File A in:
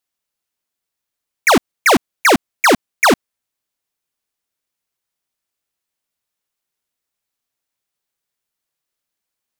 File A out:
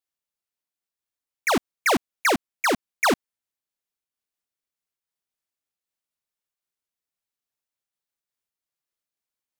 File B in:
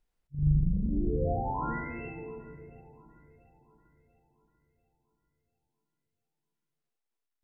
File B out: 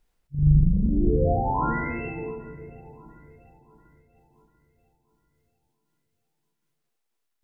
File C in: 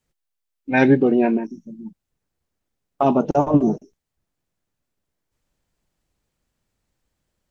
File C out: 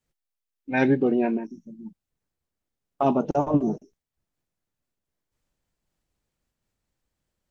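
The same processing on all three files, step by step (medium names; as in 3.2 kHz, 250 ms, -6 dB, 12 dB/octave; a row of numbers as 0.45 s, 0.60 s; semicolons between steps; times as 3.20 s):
random flutter of the level, depth 50%; normalise loudness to -24 LUFS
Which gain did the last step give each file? -7.0 dB, +10.5 dB, -2.5 dB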